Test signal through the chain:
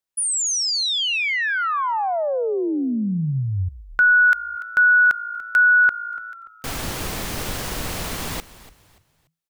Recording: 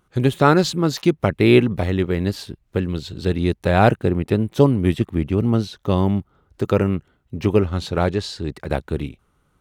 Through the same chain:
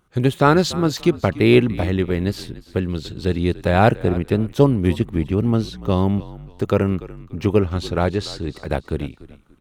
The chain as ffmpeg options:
ffmpeg -i in.wav -filter_complex "[0:a]asplit=4[link_01][link_02][link_03][link_04];[link_02]adelay=290,afreqshift=-55,volume=-17.5dB[link_05];[link_03]adelay=580,afreqshift=-110,volume=-27.4dB[link_06];[link_04]adelay=870,afreqshift=-165,volume=-37.3dB[link_07];[link_01][link_05][link_06][link_07]amix=inputs=4:normalize=0" out.wav

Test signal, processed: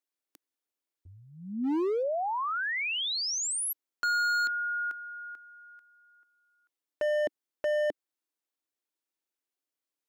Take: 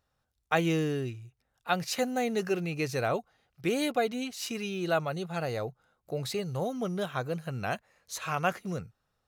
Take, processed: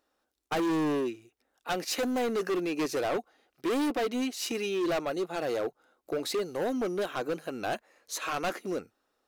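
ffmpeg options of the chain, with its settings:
ffmpeg -i in.wav -af "lowshelf=frequency=200:width_type=q:width=3:gain=-14,volume=28.5dB,asoftclip=hard,volume=-28.5dB,volume=2.5dB" out.wav

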